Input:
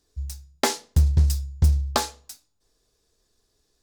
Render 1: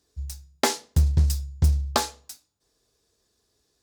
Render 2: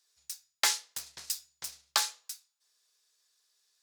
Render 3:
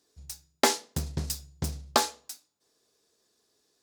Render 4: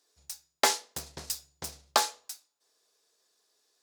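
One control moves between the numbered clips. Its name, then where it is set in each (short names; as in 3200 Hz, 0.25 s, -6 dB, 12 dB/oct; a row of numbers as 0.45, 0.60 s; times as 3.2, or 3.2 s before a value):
HPF, cutoff: 60, 1500, 200, 560 Hz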